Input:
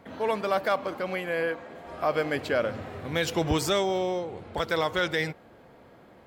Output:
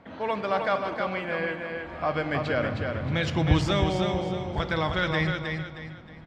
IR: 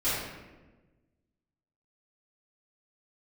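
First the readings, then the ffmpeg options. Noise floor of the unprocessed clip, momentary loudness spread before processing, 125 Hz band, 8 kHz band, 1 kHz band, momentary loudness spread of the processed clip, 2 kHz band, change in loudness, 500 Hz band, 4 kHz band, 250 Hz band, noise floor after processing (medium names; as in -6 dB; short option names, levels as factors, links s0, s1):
-54 dBFS, 8 LU, +9.0 dB, -8.0 dB, +1.0 dB, 9 LU, +1.5 dB, +1.0 dB, -1.5 dB, 0.0 dB, +3.5 dB, -45 dBFS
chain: -filter_complex "[0:a]lowpass=4200,equalizer=f=440:w=3:g=-4,aecho=1:1:313|626|939|1252:0.562|0.191|0.065|0.0221,asplit=2[s0][s1];[1:a]atrim=start_sample=2205[s2];[s1][s2]afir=irnorm=-1:irlink=0,volume=0.0841[s3];[s0][s3]amix=inputs=2:normalize=0,asubboost=boost=3.5:cutoff=210"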